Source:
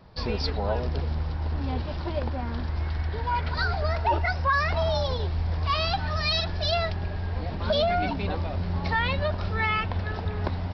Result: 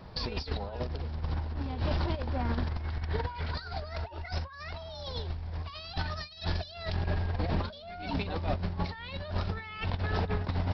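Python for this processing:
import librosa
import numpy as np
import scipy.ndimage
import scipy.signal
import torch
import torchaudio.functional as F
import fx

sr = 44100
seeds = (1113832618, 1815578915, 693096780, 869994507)

y = fx.dynamic_eq(x, sr, hz=4300.0, q=0.94, threshold_db=-44.0, ratio=4.0, max_db=7)
y = fx.over_compress(y, sr, threshold_db=-31.0, ratio=-0.5)
y = F.gain(torch.from_numpy(y), -1.5).numpy()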